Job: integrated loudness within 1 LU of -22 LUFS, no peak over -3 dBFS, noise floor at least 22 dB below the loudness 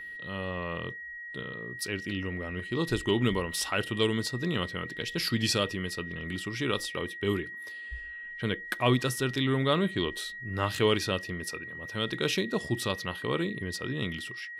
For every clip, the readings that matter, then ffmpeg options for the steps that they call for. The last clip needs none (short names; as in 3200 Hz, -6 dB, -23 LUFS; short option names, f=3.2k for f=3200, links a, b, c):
steady tone 1900 Hz; tone level -39 dBFS; loudness -31.0 LUFS; peak -10.5 dBFS; loudness target -22.0 LUFS
-> -af "bandreject=f=1.9k:w=30"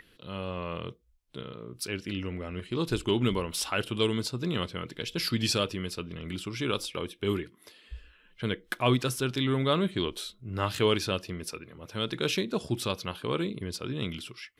steady tone none; loudness -31.0 LUFS; peak -10.0 dBFS; loudness target -22.0 LUFS
-> -af "volume=9dB,alimiter=limit=-3dB:level=0:latency=1"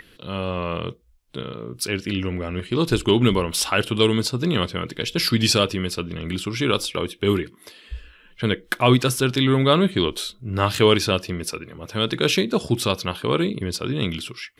loudness -22.0 LUFS; peak -3.0 dBFS; noise floor -53 dBFS